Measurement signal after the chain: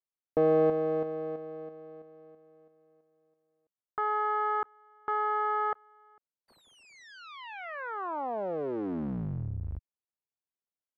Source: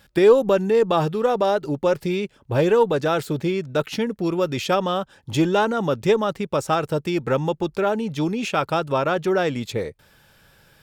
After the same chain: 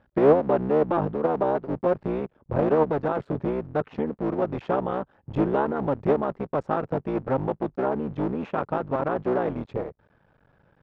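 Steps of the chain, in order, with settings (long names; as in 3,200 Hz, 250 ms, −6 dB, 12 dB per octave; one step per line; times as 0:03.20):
sub-harmonics by changed cycles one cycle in 3, muted
low-pass filter 1,100 Hz 12 dB per octave
low-shelf EQ 65 Hz −6.5 dB
level −1.5 dB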